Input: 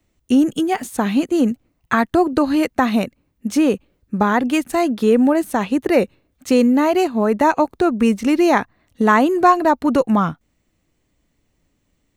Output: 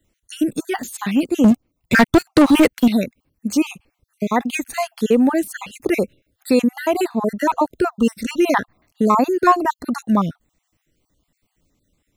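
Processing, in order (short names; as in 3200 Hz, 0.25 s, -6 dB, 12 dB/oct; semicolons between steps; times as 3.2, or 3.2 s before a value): random spectral dropouts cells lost 41%; high shelf 5700 Hz +5.5 dB; 1.44–2.88 sample leveller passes 3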